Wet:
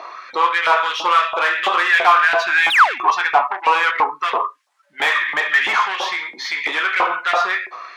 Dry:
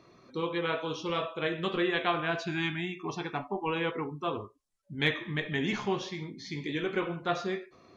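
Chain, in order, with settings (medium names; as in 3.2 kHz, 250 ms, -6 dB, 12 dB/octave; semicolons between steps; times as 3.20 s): in parallel at -3 dB: compression, threshold -40 dBFS, peak gain reduction 17 dB; on the sum: painted sound fall, 2.70–2.99 s, 210–4100 Hz -24 dBFS; overdrive pedal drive 23 dB, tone 1.4 kHz, clips at -12.5 dBFS; LFO high-pass saw up 3 Hz 740–2100 Hz; trim +6.5 dB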